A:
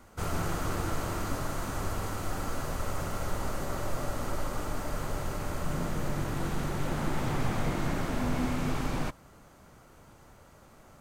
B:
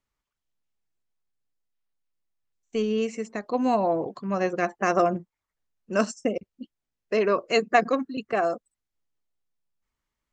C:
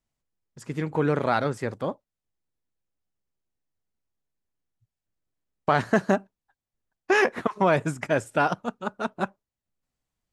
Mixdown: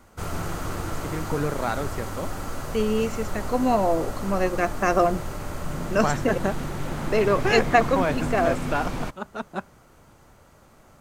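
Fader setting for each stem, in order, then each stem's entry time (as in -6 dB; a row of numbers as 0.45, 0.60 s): +1.5, +1.5, -3.5 dB; 0.00, 0.00, 0.35 s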